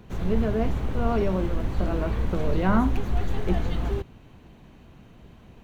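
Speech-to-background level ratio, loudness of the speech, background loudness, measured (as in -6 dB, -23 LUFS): 1.5 dB, -28.5 LUFS, -30.0 LUFS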